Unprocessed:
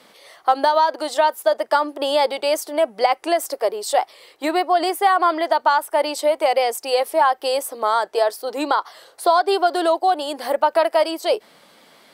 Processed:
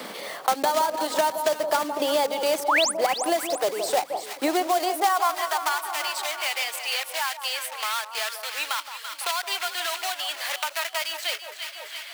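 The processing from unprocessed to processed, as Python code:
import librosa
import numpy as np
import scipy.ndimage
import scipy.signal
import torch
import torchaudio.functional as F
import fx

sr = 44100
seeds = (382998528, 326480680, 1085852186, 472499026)

p1 = fx.block_float(x, sr, bits=3)
p2 = fx.filter_sweep_highpass(p1, sr, from_hz=190.0, to_hz=2400.0, start_s=4.26, end_s=5.96, q=1.2)
p3 = fx.spec_paint(p2, sr, seeds[0], shape='rise', start_s=2.68, length_s=0.24, low_hz=750.0, high_hz=11000.0, level_db=-13.0)
p4 = p3 + fx.echo_alternate(p3, sr, ms=168, hz=1100.0, feedback_pct=67, wet_db=-9.0, dry=0)
p5 = fx.band_squash(p4, sr, depth_pct=70)
y = p5 * librosa.db_to_amplitude(-5.5)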